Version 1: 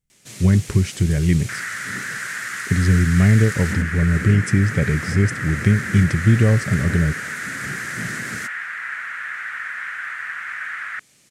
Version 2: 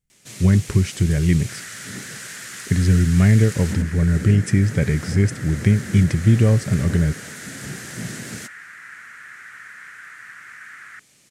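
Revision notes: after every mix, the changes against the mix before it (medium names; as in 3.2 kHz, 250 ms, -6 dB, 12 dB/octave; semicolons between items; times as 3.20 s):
second sound -11.0 dB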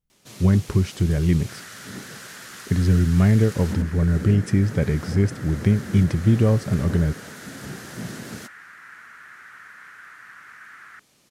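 master: add ten-band graphic EQ 125 Hz -4 dB, 1 kHz +4 dB, 2 kHz -7 dB, 8 kHz -9 dB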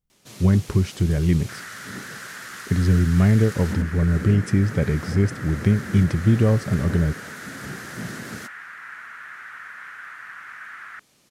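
second sound +5.5 dB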